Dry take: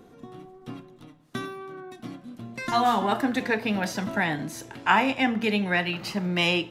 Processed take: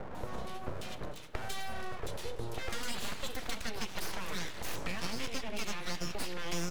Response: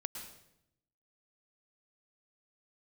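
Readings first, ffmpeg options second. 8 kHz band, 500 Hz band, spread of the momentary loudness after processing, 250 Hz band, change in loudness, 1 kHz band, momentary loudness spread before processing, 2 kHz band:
0.0 dB, -12.0 dB, 5 LU, -16.0 dB, -14.5 dB, -16.0 dB, 19 LU, -14.0 dB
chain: -filter_complex "[0:a]acrossover=split=1600[s0][s1];[s1]adelay=150[s2];[s0][s2]amix=inputs=2:normalize=0,acrossover=split=2900[s3][s4];[s3]acompressor=threshold=0.01:ratio=6[s5];[s5][s4]amix=inputs=2:normalize=0,aeval=exprs='abs(val(0))':c=same,acrossover=split=230|3800[s6][s7][s8];[s6]acompressor=threshold=0.00562:ratio=4[s9];[s7]acompressor=threshold=0.00251:ratio=4[s10];[s8]acompressor=threshold=0.00126:ratio=4[s11];[s9][s10][s11]amix=inputs=3:normalize=0,volume=3.76"

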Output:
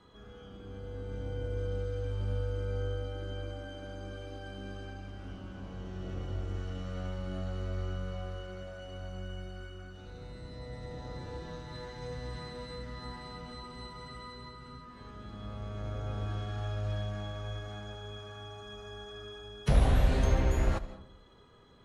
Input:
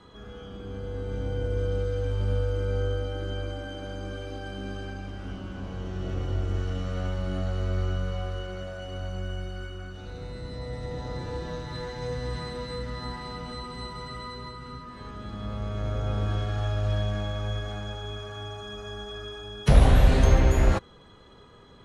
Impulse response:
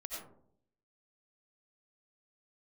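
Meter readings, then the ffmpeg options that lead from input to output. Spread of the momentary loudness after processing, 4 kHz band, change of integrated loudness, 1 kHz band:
16 LU, -7.5 dB, -7.5 dB, -7.0 dB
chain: -filter_complex "[0:a]asplit=2[s0][s1];[1:a]atrim=start_sample=2205,adelay=70[s2];[s1][s2]afir=irnorm=-1:irlink=0,volume=0.224[s3];[s0][s3]amix=inputs=2:normalize=0,volume=0.422"

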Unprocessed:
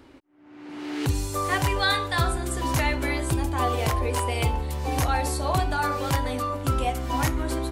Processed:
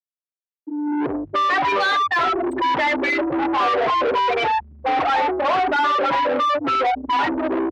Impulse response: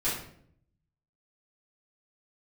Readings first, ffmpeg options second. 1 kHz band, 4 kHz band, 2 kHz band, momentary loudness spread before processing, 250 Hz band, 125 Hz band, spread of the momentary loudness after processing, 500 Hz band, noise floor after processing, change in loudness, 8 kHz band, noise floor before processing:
+9.5 dB, +3.0 dB, +7.0 dB, 5 LU, +5.5 dB, -17.5 dB, 5 LU, +7.5 dB, under -85 dBFS, +6.0 dB, under -10 dB, -51 dBFS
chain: -filter_complex "[0:a]afftfilt=real='re*gte(hypot(re,im),0.141)':imag='im*gte(hypot(re,im),0.141)':win_size=1024:overlap=0.75,asplit=2[s0][s1];[s1]highpass=f=720:p=1,volume=50.1,asoftclip=type=tanh:threshold=0.251[s2];[s0][s2]amix=inputs=2:normalize=0,lowpass=f=3600:p=1,volume=0.501,acrossover=split=240 4500:gain=0.0794 1 0.0708[s3][s4][s5];[s3][s4][s5]amix=inputs=3:normalize=0"

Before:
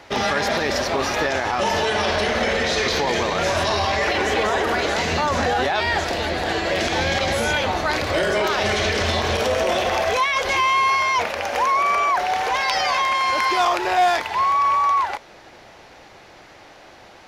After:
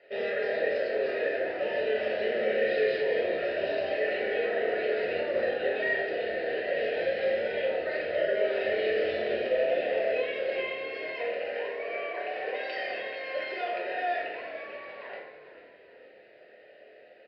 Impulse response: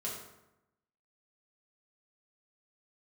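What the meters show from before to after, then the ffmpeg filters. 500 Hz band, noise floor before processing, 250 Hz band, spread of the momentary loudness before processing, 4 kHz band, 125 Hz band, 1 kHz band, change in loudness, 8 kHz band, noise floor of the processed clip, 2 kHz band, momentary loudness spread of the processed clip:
-4.0 dB, -46 dBFS, -13.0 dB, 4 LU, -17.0 dB, under -20 dB, -19.5 dB, -9.5 dB, under -40 dB, -54 dBFS, -10.5 dB, 7 LU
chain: -filter_complex "[1:a]atrim=start_sample=2205[s0];[0:a][s0]afir=irnorm=-1:irlink=0,aresample=11025,aresample=44100,asplit=3[s1][s2][s3];[s1]bandpass=f=530:t=q:w=8,volume=1[s4];[s2]bandpass=f=1840:t=q:w=8,volume=0.501[s5];[s3]bandpass=f=2480:t=q:w=8,volume=0.355[s6];[s4][s5][s6]amix=inputs=3:normalize=0,bandreject=f=3400:w=25,asplit=5[s7][s8][s9][s10][s11];[s8]adelay=445,afreqshift=-71,volume=0.224[s12];[s9]adelay=890,afreqshift=-142,volume=0.0832[s13];[s10]adelay=1335,afreqshift=-213,volume=0.0305[s14];[s11]adelay=1780,afreqshift=-284,volume=0.0114[s15];[s7][s12][s13][s14][s15]amix=inputs=5:normalize=0"

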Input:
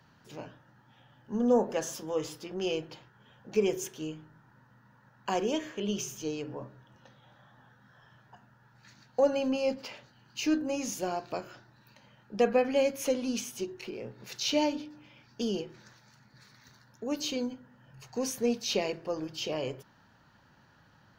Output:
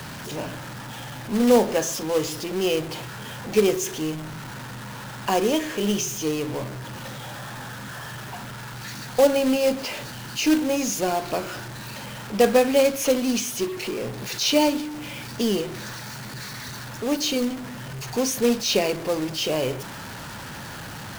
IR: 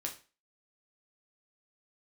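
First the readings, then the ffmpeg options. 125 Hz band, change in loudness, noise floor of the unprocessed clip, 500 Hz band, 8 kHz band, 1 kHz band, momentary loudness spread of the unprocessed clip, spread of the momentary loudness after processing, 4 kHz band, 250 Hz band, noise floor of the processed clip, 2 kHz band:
+12.5 dB, +7.5 dB, -62 dBFS, +8.0 dB, +11.0 dB, +9.0 dB, 18 LU, 16 LU, +10.0 dB, +8.5 dB, -37 dBFS, +11.0 dB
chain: -af "aeval=exprs='val(0)+0.5*0.0133*sgn(val(0))':c=same,acrusher=bits=3:mode=log:mix=0:aa=0.000001,volume=2.24"

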